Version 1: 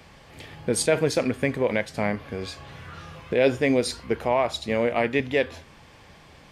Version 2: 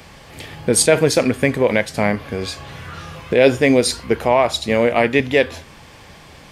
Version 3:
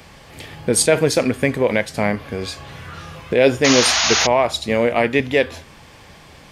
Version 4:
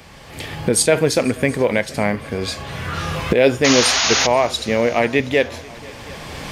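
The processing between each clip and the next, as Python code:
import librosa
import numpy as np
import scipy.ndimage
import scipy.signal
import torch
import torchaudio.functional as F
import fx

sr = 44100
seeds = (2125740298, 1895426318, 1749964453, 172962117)

y1 = fx.high_shelf(x, sr, hz=6500.0, db=6.0)
y1 = y1 * 10.0 ** (7.5 / 20.0)
y2 = fx.spec_paint(y1, sr, seeds[0], shape='noise', start_s=3.64, length_s=0.63, low_hz=580.0, high_hz=6900.0, level_db=-16.0)
y2 = y2 * 10.0 ** (-1.5 / 20.0)
y3 = fx.recorder_agc(y2, sr, target_db=-11.0, rise_db_per_s=13.0, max_gain_db=30)
y3 = fx.quant_float(y3, sr, bits=6)
y3 = fx.echo_heads(y3, sr, ms=242, heads='second and third', feedback_pct=43, wet_db=-23.5)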